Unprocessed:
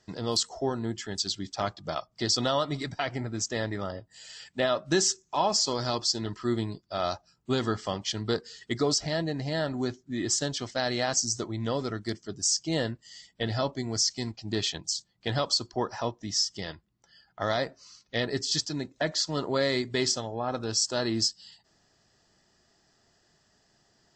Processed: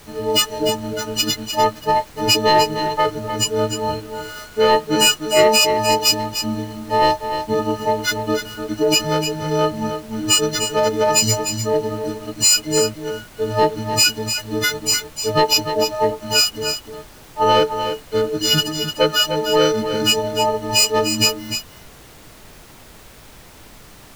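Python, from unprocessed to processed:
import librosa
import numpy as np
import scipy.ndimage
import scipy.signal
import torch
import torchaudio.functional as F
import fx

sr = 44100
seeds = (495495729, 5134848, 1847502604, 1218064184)

p1 = fx.freq_snap(x, sr, grid_st=6)
p2 = fx.peak_eq(p1, sr, hz=640.0, db=13.0, octaves=1.4)
p3 = fx.leveller(p2, sr, passes=1)
p4 = fx.formant_shift(p3, sr, semitones=-3)
p5 = fx.dmg_noise_colour(p4, sr, seeds[0], colour='pink', level_db=-40.0)
p6 = p5 + fx.echo_single(p5, sr, ms=301, db=-8.5, dry=0)
y = p6 * 10.0 ** (-3.5 / 20.0)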